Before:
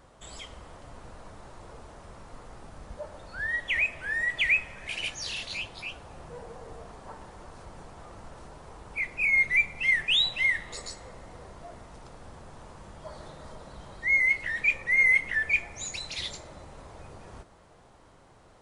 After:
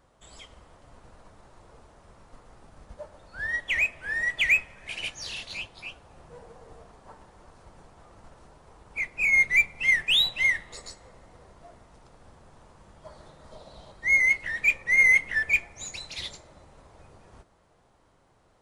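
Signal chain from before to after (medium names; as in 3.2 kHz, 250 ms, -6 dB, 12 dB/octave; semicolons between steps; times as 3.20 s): 13.52–13.92 s: fifteen-band graphic EQ 630 Hz +7 dB, 1.6 kHz -3 dB, 4 kHz +10 dB; in parallel at -4 dB: saturation -28 dBFS, distortion -7 dB; on the sum: upward expansion 1.5:1, over -43 dBFS; trim +1.5 dB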